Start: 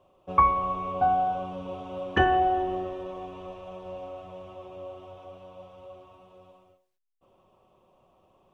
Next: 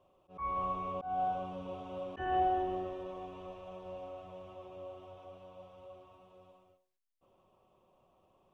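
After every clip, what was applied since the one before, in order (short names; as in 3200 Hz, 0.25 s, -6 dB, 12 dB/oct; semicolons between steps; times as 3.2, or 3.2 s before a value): auto swell 0.232 s; gain -6 dB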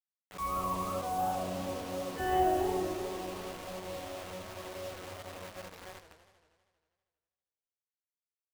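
Schroeder reverb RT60 0.81 s, combs from 29 ms, DRR 7 dB; requantised 8-bit, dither none; warbling echo 80 ms, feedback 74%, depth 213 cents, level -11.5 dB; gain +3.5 dB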